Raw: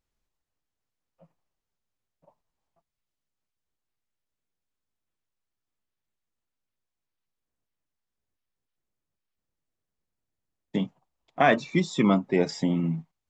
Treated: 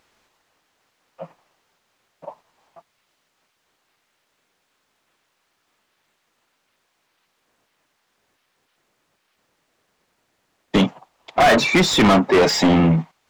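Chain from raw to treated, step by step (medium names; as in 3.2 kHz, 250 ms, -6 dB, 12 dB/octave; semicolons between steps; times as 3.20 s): overdrive pedal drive 35 dB, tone 2.7 kHz, clips at -6 dBFS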